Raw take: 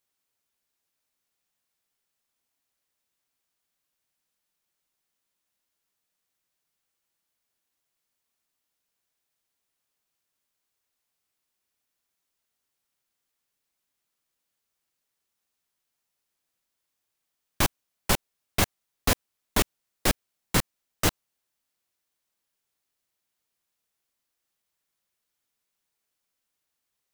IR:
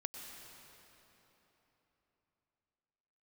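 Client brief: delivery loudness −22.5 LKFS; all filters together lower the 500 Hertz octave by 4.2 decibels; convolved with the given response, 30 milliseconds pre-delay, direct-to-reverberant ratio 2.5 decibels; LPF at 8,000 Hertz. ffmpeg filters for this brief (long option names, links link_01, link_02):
-filter_complex "[0:a]lowpass=8000,equalizer=frequency=500:width_type=o:gain=-5.5,asplit=2[link_01][link_02];[1:a]atrim=start_sample=2205,adelay=30[link_03];[link_02][link_03]afir=irnorm=-1:irlink=0,volume=-1dB[link_04];[link_01][link_04]amix=inputs=2:normalize=0,volume=6.5dB"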